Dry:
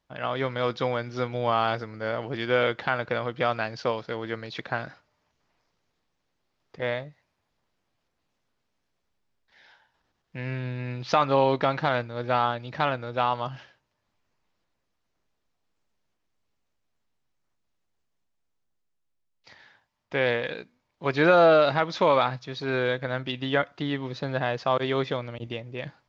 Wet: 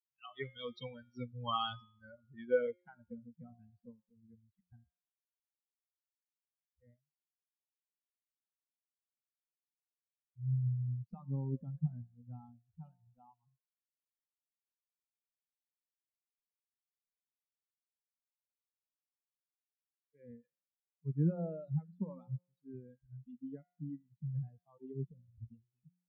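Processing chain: expander on every frequency bin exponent 3; spectral noise reduction 27 dB; de-hum 178.5 Hz, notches 21; low-pass sweep 3.2 kHz -> 170 Hz, 1.91–3.37 s; trim -2 dB

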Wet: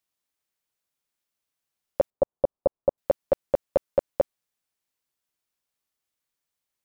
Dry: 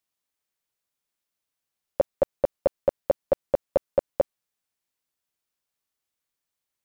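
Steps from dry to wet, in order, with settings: 2.10–2.98 s: low-pass 1.1 kHz 24 dB/octave

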